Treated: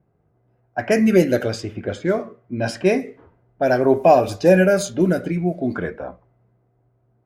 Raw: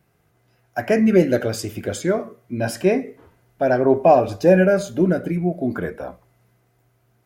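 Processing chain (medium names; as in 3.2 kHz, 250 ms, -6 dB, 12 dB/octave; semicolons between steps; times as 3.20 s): level-controlled noise filter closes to 750 Hz, open at -14.5 dBFS; treble shelf 3.4 kHz +9.5 dB, from 1.24 s +4.5 dB, from 2.66 s +10.5 dB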